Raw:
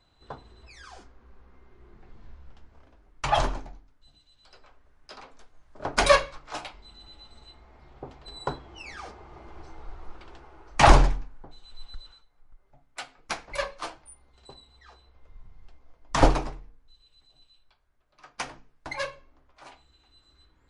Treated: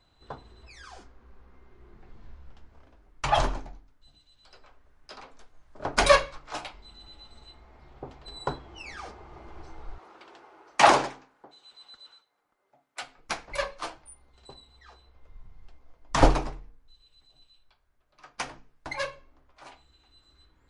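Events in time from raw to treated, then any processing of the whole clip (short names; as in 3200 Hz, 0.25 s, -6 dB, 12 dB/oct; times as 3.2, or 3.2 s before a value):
9.98–13.02 HPF 320 Hz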